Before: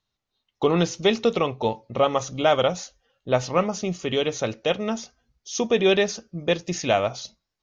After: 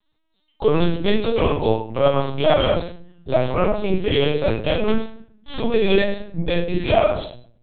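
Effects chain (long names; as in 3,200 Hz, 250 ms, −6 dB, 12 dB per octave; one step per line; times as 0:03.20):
0:04.86–0:05.58: lower of the sound and its delayed copy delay 3.8 ms
in parallel at 0 dB: compressor whose output falls as the input rises −24 dBFS, ratio −1
on the sum: rectangular room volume 65 cubic metres, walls mixed, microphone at 1.3 metres
linear-prediction vocoder at 8 kHz pitch kept
level −7 dB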